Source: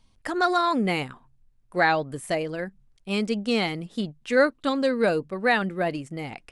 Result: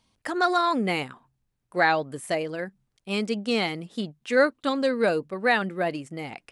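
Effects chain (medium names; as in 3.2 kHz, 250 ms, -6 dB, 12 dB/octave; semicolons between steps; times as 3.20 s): high-pass 170 Hz 6 dB/octave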